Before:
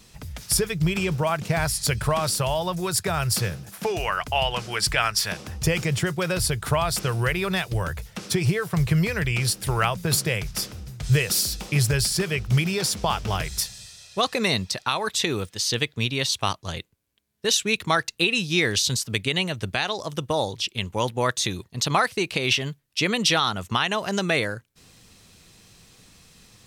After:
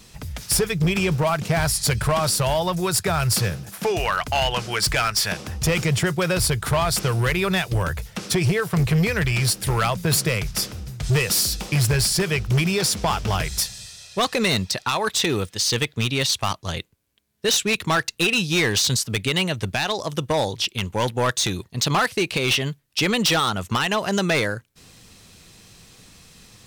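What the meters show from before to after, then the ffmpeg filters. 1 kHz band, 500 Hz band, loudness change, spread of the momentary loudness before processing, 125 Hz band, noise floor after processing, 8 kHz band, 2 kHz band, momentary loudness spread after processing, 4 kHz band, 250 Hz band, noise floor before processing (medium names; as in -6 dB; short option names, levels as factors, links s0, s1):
+2.0 dB, +2.5 dB, +2.5 dB, 7 LU, +2.5 dB, -55 dBFS, +2.5 dB, +2.0 dB, 6 LU, +2.0 dB, +3.0 dB, -59 dBFS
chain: -af "volume=9.44,asoftclip=hard,volume=0.106,volume=1.58"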